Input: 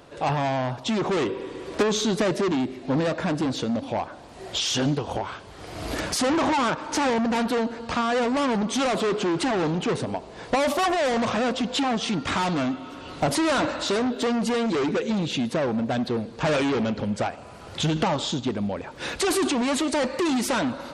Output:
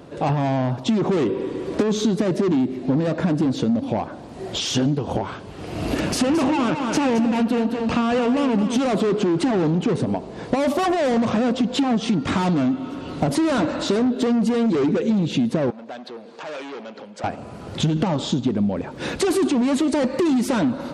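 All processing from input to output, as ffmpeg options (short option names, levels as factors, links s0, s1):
-filter_complex "[0:a]asettb=1/sr,asplit=3[s0][s1][s2];[s0]atrim=end=5.474[s3];[s1]atrim=start=5.47:end=8.78,asetpts=PTS-STARTPTS,afade=t=in:d=0.004:c=qsin,afade=t=out:st=3.306:d=0.004:c=qsin,equalizer=f=2700:t=o:w=0.24:g=8,aecho=1:1:219:0.398,atrim=end_sample=145971[s4];[s2]atrim=start=8.776[s5];[s3][s4]acrossfade=d=0.004:c1=hsin:c2=qsin[s6];[s6][s5]acrossfade=d=0.004:c1=qsin:c2=hsin,asettb=1/sr,asplit=3[s7][s8][s9];[s7]atrim=end=15.704[s10];[s8]atrim=start=15.7:end=17.24,asetpts=PTS-STARTPTS,afade=t=in:d=0.004:c=qsin,afade=t=out:st=1.536:d=0.004:c=qsin,acompressor=threshold=0.0251:ratio=5:attack=3.2:release=140:knee=1:detection=peak,highpass=630,lowpass=7900[s11];[s9]atrim=start=17.236[s12];[s10][s11]acrossfade=d=0.004:c1=hsin:c2=qsin[s13];[s13][s12]acrossfade=d=0.004:c1=qsin:c2=hsin,equalizer=f=200:t=o:w=2.8:g=11.5,acompressor=threshold=0.141:ratio=6"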